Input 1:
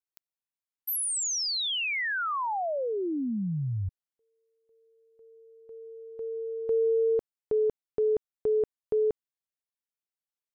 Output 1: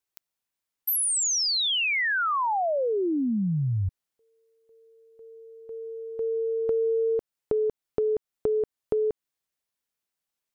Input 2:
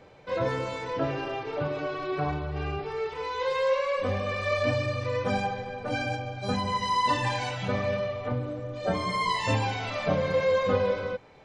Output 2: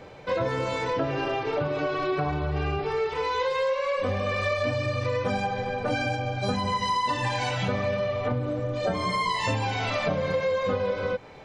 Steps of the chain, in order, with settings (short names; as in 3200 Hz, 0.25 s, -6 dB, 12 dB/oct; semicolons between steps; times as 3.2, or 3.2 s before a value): compressor, threshold -31 dBFS; gain +7.5 dB